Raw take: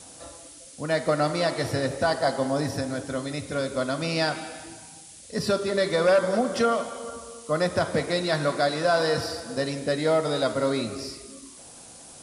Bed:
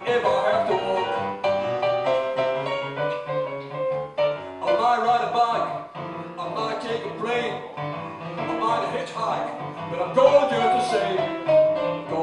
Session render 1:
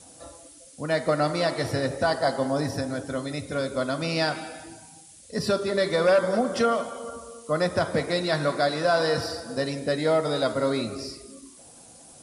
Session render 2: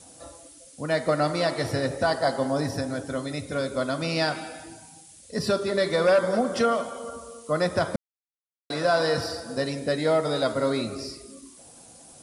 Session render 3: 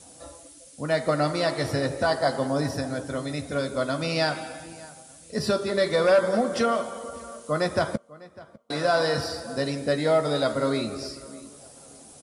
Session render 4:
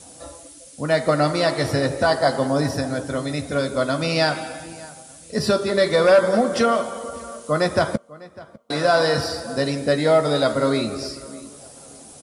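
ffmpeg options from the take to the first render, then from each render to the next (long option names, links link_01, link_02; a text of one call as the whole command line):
ffmpeg -i in.wav -af "afftdn=noise_reduction=6:noise_floor=-47" out.wav
ffmpeg -i in.wav -filter_complex "[0:a]asplit=3[link_01][link_02][link_03];[link_01]atrim=end=7.96,asetpts=PTS-STARTPTS,afade=type=out:start_time=7.956:duration=0.004:curve=hsin[link_04];[link_02]atrim=start=7.96:end=8.7,asetpts=PTS-STARTPTS,volume=0[link_05];[link_03]atrim=start=8.7,asetpts=PTS-STARTPTS,afade=type=in:duration=0.004:curve=hsin[link_06];[link_04][link_05][link_06]concat=n=3:v=0:a=1" out.wav
ffmpeg -i in.wav -filter_complex "[0:a]asplit=2[link_01][link_02];[link_02]adelay=14,volume=-12dB[link_03];[link_01][link_03]amix=inputs=2:normalize=0,asplit=2[link_04][link_05];[link_05]adelay=601,lowpass=frequency=3600:poles=1,volume=-20.5dB,asplit=2[link_06][link_07];[link_07]adelay=601,lowpass=frequency=3600:poles=1,volume=0.35,asplit=2[link_08][link_09];[link_09]adelay=601,lowpass=frequency=3600:poles=1,volume=0.35[link_10];[link_04][link_06][link_08][link_10]amix=inputs=4:normalize=0" out.wav
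ffmpeg -i in.wav -af "volume=5dB" out.wav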